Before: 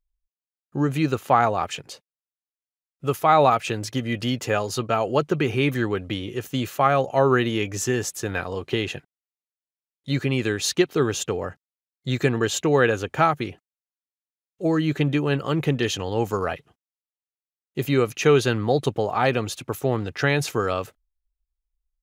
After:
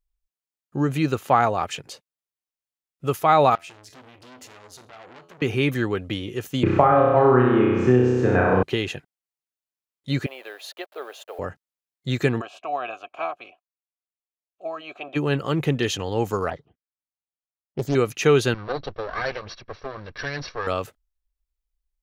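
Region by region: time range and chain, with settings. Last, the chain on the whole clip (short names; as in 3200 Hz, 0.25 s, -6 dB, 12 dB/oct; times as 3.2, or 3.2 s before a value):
3.55–5.42 compressor 10:1, threshold -28 dBFS + resonator 85 Hz, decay 0.3 s, mix 80% + core saturation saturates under 2900 Hz
6.63–8.63 LPF 1300 Hz + flutter echo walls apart 5.5 m, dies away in 1.1 s + three-band squash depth 100%
10.26–11.39 level-crossing sampler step -38 dBFS + ladder high-pass 560 Hz, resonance 65% + band shelf 6800 Hz -9.5 dB 1 oct
12.4–15.15 spectral limiter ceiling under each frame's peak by 16 dB + vowel filter a + comb 3.1 ms, depth 37%
16.5–17.95 low-pass opened by the level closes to 1100 Hz, open at -23.5 dBFS + envelope phaser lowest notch 390 Hz, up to 2600 Hz, full sweep at -31.5 dBFS + Doppler distortion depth 0.62 ms
18.54–20.67 minimum comb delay 1.8 ms + rippled Chebyshev low-pass 5800 Hz, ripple 6 dB
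whole clip: dry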